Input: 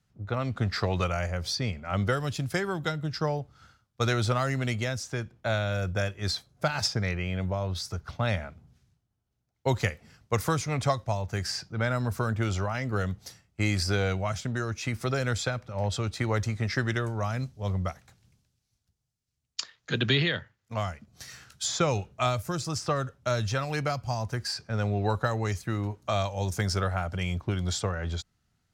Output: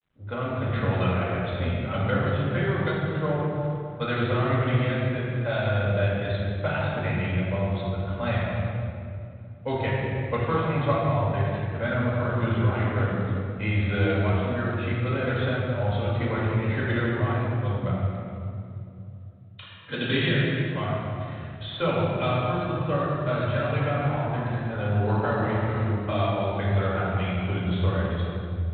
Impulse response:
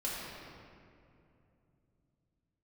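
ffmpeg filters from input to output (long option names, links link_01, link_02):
-filter_complex "[0:a]asettb=1/sr,asplit=3[link_01][link_02][link_03];[link_01]atrim=end=23.744[link_04];[link_02]atrim=start=23.74:end=26.09,asetpts=PTS-STARTPTS,afade=type=in:duration=0.004:curve=qsin,afade=type=out:start_time=2.346:duration=0.004:curve=qsin,asplit=4[link_05][link_06][link_07][link_08];[link_06]adelay=149,afreqshift=110,volume=-11.5dB[link_09];[link_07]adelay=298,afreqshift=220,volume=-21.1dB[link_10];[link_08]adelay=447,afreqshift=330,volume=-30.8dB[link_11];[link_05][link_09][link_10][link_11]amix=inputs=4:normalize=0,atrim=end_sample=103635[link_12];[link_03]atrim=start=26.086[link_13];[link_04][link_12]acrossfade=duration=0.004:curve1=hsin:curve2=qsin[link_14];[link_14][link_13]acrossfade=duration=0.004:curve1=qsin:curve2=hsin[link_15];[1:a]atrim=start_sample=2205[link_16];[link_15][link_16]afir=irnorm=-1:irlink=0,volume=-1.5dB" -ar 8000 -c:a adpcm_g726 -b:a 32k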